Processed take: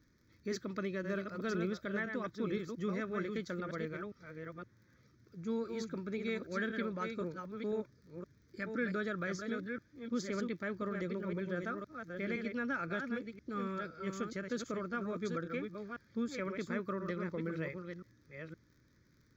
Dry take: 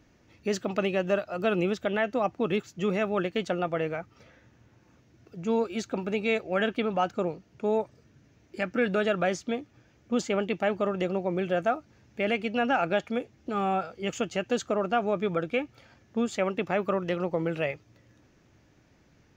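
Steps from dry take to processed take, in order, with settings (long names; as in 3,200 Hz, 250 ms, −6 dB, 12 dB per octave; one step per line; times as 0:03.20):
delay that plays each chunk backwards 515 ms, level −5.5 dB
surface crackle 40 per second −47 dBFS
phaser with its sweep stopped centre 2,800 Hz, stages 6
level −7 dB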